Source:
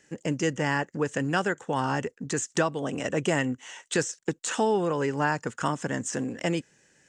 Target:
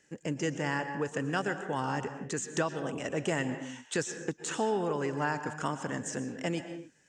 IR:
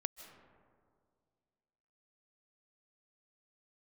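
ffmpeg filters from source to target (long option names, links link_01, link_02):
-filter_complex "[1:a]atrim=start_sample=2205,afade=type=out:start_time=0.44:duration=0.01,atrim=end_sample=19845,asetrate=57330,aresample=44100[link_01];[0:a][link_01]afir=irnorm=-1:irlink=0,volume=-1.5dB"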